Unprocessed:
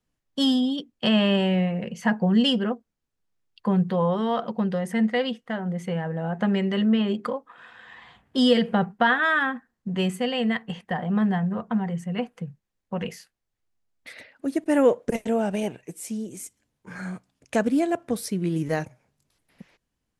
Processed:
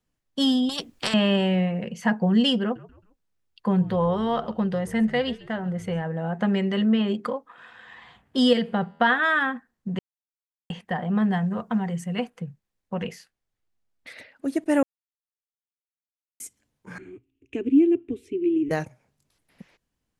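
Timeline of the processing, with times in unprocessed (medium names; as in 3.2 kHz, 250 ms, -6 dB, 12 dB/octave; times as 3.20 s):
0.69–1.14 s: spectrum-flattening compressor 4:1
2.62–6.02 s: frequency-shifting echo 134 ms, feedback 39%, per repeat -72 Hz, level -19.5 dB
8.53–9.01 s: feedback comb 82 Hz, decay 1.6 s, mix 30%
9.99–10.70 s: mute
11.32–12.30 s: treble shelf 3.6 kHz +8 dB
13.05–14.12 s: treble shelf 8.1 kHz -6.5 dB
14.83–16.40 s: mute
16.98–18.71 s: FFT filter 120 Hz 0 dB, 170 Hz -29 dB, 270 Hz +5 dB, 390 Hz +8 dB, 560 Hz -24 dB, 1.6 kHz -21 dB, 2.7 kHz -1 dB, 4.7 kHz -29 dB, 7 kHz -20 dB, 10 kHz -29 dB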